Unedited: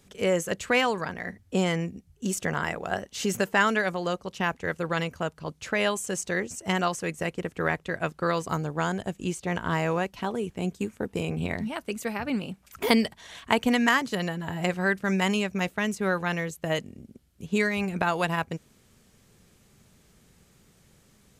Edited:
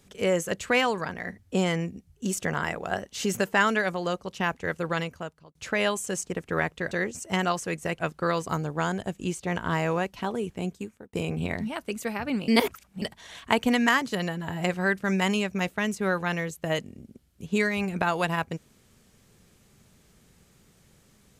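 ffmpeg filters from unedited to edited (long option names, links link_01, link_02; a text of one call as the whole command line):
ffmpeg -i in.wav -filter_complex "[0:a]asplit=8[link_01][link_02][link_03][link_04][link_05][link_06][link_07][link_08];[link_01]atrim=end=5.55,asetpts=PTS-STARTPTS,afade=type=out:start_time=4.92:duration=0.63[link_09];[link_02]atrim=start=5.55:end=6.272,asetpts=PTS-STARTPTS,afade=type=in:duration=0.004:curve=hsin[link_10];[link_03]atrim=start=7.348:end=7.992[link_11];[link_04]atrim=start=6.268:end=7.352[link_12];[link_05]atrim=start=7.988:end=11.13,asetpts=PTS-STARTPTS,afade=type=out:start_time=2.562:duration=0.58[link_13];[link_06]atrim=start=11.13:end=12.482,asetpts=PTS-STARTPTS,afade=type=in:duration=0.004:curve=hsin[link_14];[link_07]atrim=start=12.478:end=13.022,asetpts=PTS-STARTPTS,areverse[link_15];[link_08]atrim=start=13.018[link_16];[link_09][link_10]concat=n=2:v=0:a=1[link_17];[link_17][link_11]acrossfade=duration=0.004:curve1=hsin:curve2=hsin[link_18];[link_18][link_12]acrossfade=duration=0.004:curve1=hsin:curve2=hsin[link_19];[link_13][link_14]concat=n=2:v=0:a=1[link_20];[link_19][link_20]acrossfade=duration=0.004:curve1=hsin:curve2=hsin[link_21];[link_21][link_15]acrossfade=duration=0.004:curve1=hsin:curve2=hsin[link_22];[link_22][link_16]acrossfade=duration=0.004:curve1=hsin:curve2=hsin" out.wav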